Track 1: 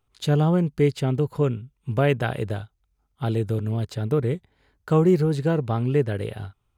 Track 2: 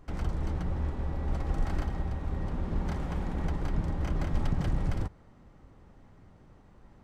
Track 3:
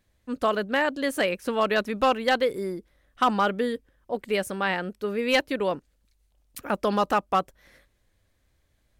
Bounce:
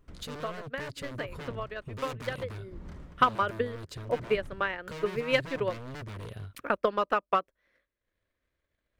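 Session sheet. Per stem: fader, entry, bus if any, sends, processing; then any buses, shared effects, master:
−2.0 dB, 0.00 s, bus A, no send, low-shelf EQ 110 Hz +3 dB; soft clipping −17.5 dBFS, distortion −12 dB
−9.5 dB, 0.00 s, bus A, no send, tremolo with a sine in dB 0.69 Hz, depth 33 dB
0:02.54 −16.5 dB → 0:03.02 −6.5 dB, 0.00 s, no bus, no send, bass and treble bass −10 dB, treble −14 dB; transient designer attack +10 dB, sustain −7 dB
bus A: 0.0 dB, wave folding −29 dBFS; downward compressor, threshold −38 dBFS, peak gain reduction 6.5 dB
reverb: not used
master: parametric band 800 Hz −10 dB 0.29 octaves

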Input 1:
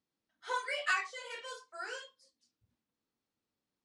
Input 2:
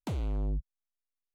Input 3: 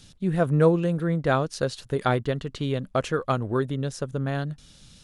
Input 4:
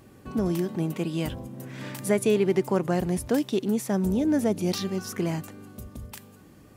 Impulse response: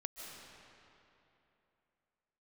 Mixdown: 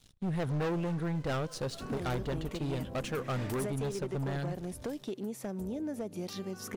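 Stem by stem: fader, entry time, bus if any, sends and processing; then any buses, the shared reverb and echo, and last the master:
−16.0 dB, 0.00 s, no send, downward compressor, threshold −43 dBFS, peak gain reduction 15.5 dB; parametric band 530 Hz +13.5 dB 2.5 octaves; short delay modulated by noise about 3,800 Hz, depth 0.033 ms
0.0 dB, 1.90 s, no send, brickwall limiter −40.5 dBFS, peak gain reduction 12 dB
−17.5 dB, 0.00 s, send −19 dB, low-shelf EQ 64 Hz +7 dB; leveller curve on the samples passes 3
−4.5 dB, 1.55 s, no send, parametric band 550 Hz +4.5 dB 0.97 octaves; downward compressor 6 to 1, threshold −30 dBFS, peak gain reduction 14 dB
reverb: on, RT60 3.0 s, pre-delay 110 ms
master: hard clipping −29.5 dBFS, distortion −14 dB

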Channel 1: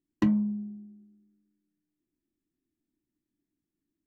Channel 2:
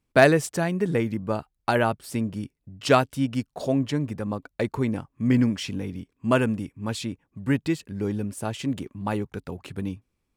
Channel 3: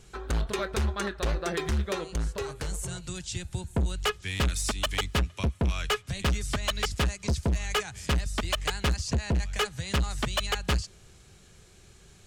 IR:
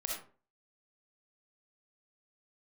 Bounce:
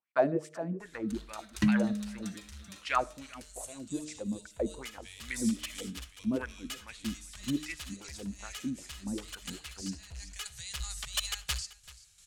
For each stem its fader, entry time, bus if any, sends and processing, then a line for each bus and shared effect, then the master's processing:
+2.0 dB, 1.40 s, no send, no echo send, flat-topped bell 530 Hz −11 dB 2.4 octaves
−2.0 dB, 0.00 s, send −22 dB, echo send −22 dB, LFO wah 2.5 Hz 200–2,300 Hz, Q 4.1; notch filter 420 Hz, Q 12; hum removal 152.1 Hz, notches 4
−4.0 dB, 0.80 s, send −16.5 dB, echo send −18 dB, guitar amp tone stack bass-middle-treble 10-0-10; shaped tremolo saw down 2.9 Hz, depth 60%; automatic ducking −11 dB, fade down 1.35 s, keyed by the second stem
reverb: on, RT60 0.40 s, pre-delay 20 ms
echo: single-tap delay 386 ms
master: parametric band 10,000 Hz +8.5 dB 2.4 octaves

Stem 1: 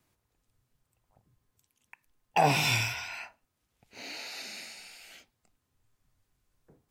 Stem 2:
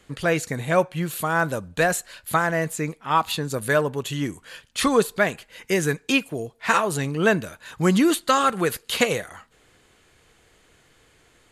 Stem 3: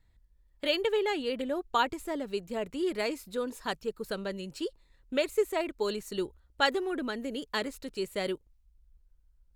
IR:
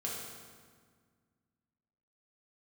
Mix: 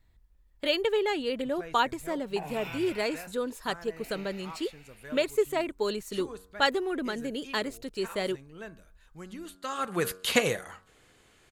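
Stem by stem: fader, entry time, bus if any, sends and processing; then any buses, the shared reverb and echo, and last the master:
−6.5 dB, 0.00 s, no send, flat-topped bell 6,700 Hz −14 dB; downward compressor 4 to 1, threshold −32 dBFS, peak gain reduction 11.5 dB
−3.0 dB, 1.35 s, no send, hum removal 93.14 Hz, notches 18; automatic ducking −21 dB, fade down 1.80 s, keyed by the third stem
+1.5 dB, 0.00 s, no send, no processing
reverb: not used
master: no processing

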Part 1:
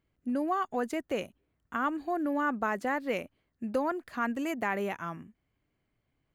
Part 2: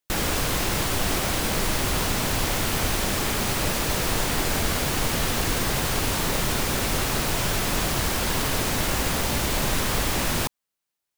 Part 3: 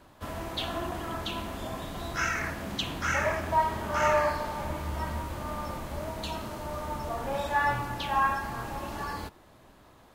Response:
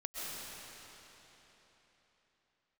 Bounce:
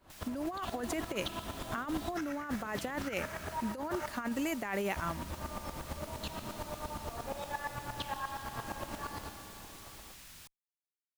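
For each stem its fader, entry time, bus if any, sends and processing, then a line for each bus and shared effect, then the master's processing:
−2.5 dB, 0.00 s, no send, high-shelf EQ 3,300 Hz +8 dB
−20.0 dB, 0.00 s, no send, guitar amp tone stack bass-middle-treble 5-5-5
−1.0 dB, 0.00 s, muted 0:04.06–0:04.96, send −7 dB, downward compressor, threshold −35 dBFS, peak gain reduction 14.5 dB; tremolo with a ramp in dB swelling 8.6 Hz, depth 18 dB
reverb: on, RT60 3.9 s, pre-delay 90 ms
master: compressor whose output falls as the input rises −34 dBFS, ratio −0.5

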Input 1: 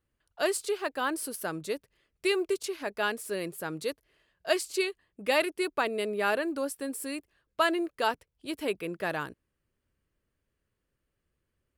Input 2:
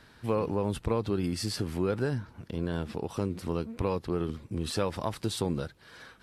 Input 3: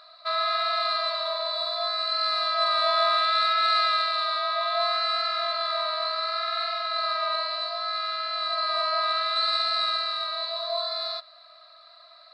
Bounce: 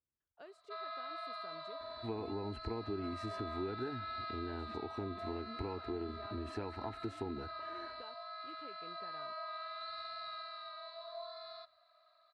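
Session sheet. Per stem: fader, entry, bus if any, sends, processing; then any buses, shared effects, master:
−17.0 dB, 0.00 s, no send, downward compressor, threshold −32 dBFS, peak gain reduction 12 dB
+1.0 dB, 1.80 s, no send, phaser with its sweep stopped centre 810 Hz, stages 8
−12.5 dB, 0.45 s, no send, no processing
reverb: not used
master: high-pass filter 51 Hz; head-to-tape spacing loss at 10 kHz 25 dB; downward compressor 2 to 1, threshold −42 dBFS, peak gain reduction 8.5 dB

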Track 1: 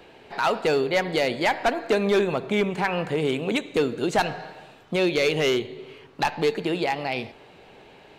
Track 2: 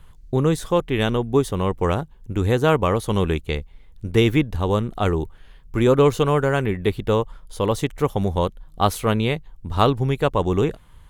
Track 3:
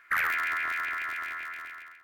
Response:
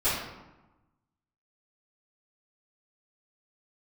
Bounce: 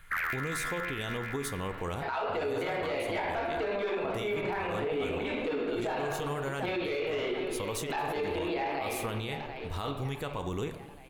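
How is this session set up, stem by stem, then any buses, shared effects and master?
+0.5 dB, 1.70 s, bus A, send −14 dB, echo send −16 dB, three-way crossover with the lows and the highs turned down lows −22 dB, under 280 Hz, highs −15 dB, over 3,800 Hz
−8.0 dB, 0.00 s, bus A, send −24 dB, no echo send, spectral tilt +2.5 dB per octave
−4.0 dB, 0.00 s, no bus, no send, no echo send, no processing
bus A: 0.0 dB, floating-point word with a short mantissa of 6 bits; downward compressor, threshold −29 dBFS, peak gain reduction 13 dB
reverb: on, RT60 1.1 s, pre-delay 3 ms
echo: repeating echo 740 ms, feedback 50%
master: low-shelf EQ 140 Hz +9 dB; brickwall limiter −24.5 dBFS, peak gain reduction 14 dB

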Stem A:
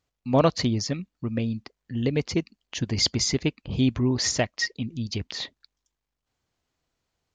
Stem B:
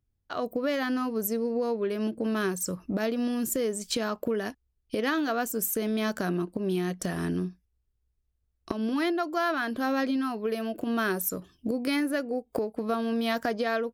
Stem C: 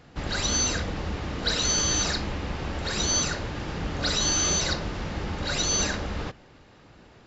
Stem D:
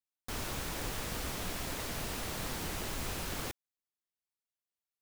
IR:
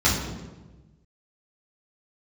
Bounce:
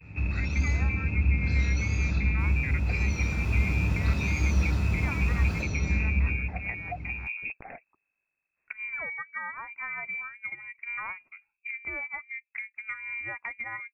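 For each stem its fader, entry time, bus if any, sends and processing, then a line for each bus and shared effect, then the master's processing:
−0.5 dB, 2.30 s, bus A, no send, downward compressor, threshold −24 dBFS, peak gain reduction 10 dB
−2.0 dB, 0.00 s, bus A, no send, expander for the loud parts 2.5 to 1, over −37 dBFS
−11.5 dB, 0.00 s, bus A, send −10.5 dB, spectral tilt −2.5 dB per octave; downward compressor 6 to 1, threshold −29 dBFS, peak gain reduction 12.5 dB; tape wow and flutter 120 cents
0:03.01 −19.5 dB → 0:03.49 −11 dB, 2.10 s, no bus, send −8.5 dB, slew-rate limiting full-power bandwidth 27 Hz
bus A: 0.0 dB, voice inversion scrambler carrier 2,600 Hz; downward compressor, threshold −32 dBFS, peak gain reduction 10 dB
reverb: on, RT60 1.2 s, pre-delay 3 ms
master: no processing

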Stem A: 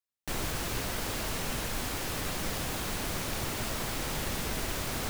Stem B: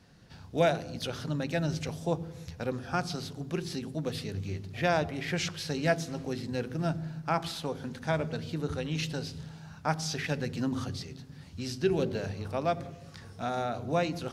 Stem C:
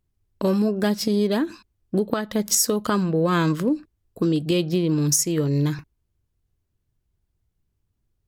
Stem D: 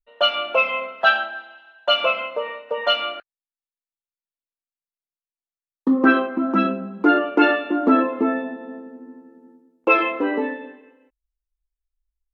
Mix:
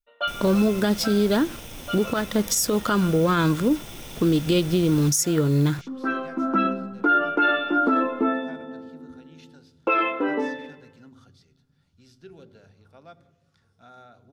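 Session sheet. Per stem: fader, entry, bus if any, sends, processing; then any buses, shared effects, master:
−5.0 dB, 0.00 s, no send, lower of the sound and its delayed copy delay 0.33 ms
−19.0 dB, 0.40 s, no send, no processing
+1.5 dB, 0.00 s, no send, hold until the input has moved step −38.5 dBFS
−2.5 dB, 0.00 s, no send, automatic ducking −17 dB, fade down 0.40 s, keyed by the third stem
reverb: not used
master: hollow resonant body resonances 1,400/3,500 Hz, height 12 dB; brickwall limiter −12 dBFS, peak gain reduction 11 dB

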